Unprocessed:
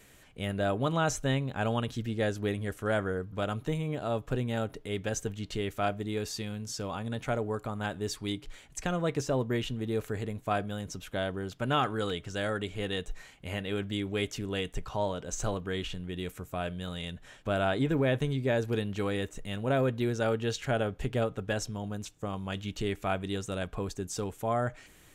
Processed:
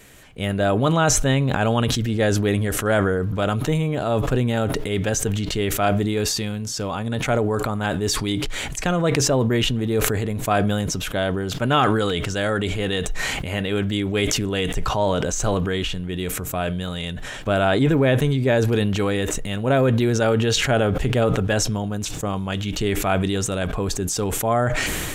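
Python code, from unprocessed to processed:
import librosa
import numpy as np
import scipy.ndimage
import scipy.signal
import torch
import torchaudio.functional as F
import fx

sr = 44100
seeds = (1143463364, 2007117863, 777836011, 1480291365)

y = fx.sustainer(x, sr, db_per_s=20.0)
y = F.gain(torch.from_numpy(y), 9.0).numpy()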